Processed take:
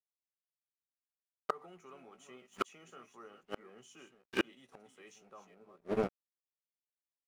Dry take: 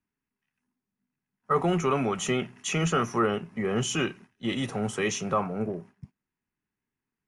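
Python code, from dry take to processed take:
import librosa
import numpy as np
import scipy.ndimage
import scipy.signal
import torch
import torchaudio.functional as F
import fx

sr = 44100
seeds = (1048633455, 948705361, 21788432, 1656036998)

y = fx.reverse_delay(x, sr, ms=264, wet_db=-9.0)
y = scipy.signal.sosfilt(scipy.signal.butter(2, 270.0, 'highpass', fs=sr, output='sos'), y)
y = np.sign(y) * np.maximum(np.abs(y) - 10.0 ** (-49.5 / 20.0), 0.0)
y = fx.doubler(y, sr, ms=16.0, db=-10.5)
y = fx.gate_flip(y, sr, shuts_db=-29.0, range_db=-40)
y = y * librosa.db_to_amplitude(12.5)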